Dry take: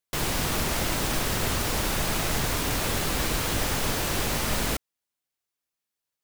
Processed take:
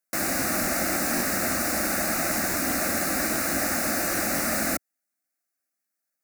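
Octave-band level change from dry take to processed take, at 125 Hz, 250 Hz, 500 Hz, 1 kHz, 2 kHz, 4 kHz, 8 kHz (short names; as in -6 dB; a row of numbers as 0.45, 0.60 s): -8.5, +3.0, +1.5, +1.0, +3.0, -4.5, +3.0 dB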